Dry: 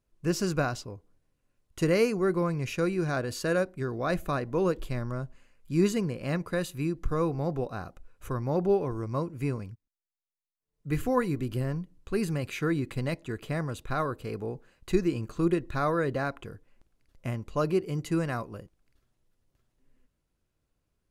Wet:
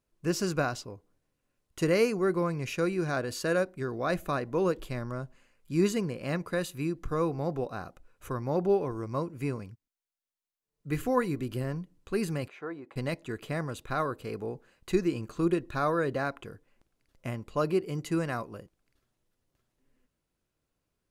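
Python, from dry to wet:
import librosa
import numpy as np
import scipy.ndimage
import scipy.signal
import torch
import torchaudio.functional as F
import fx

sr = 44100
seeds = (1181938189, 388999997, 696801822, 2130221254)

y = fx.bandpass_q(x, sr, hz=770.0, q=1.7, at=(12.48, 12.96))
y = fx.notch(y, sr, hz=2000.0, q=12.0, at=(15.43, 16.11))
y = fx.notch(y, sr, hz=6100.0, q=9.6, at=(17.29, 17.89))
y = fx.low_shelf(y, sr, hz=110.0, db=-8.5)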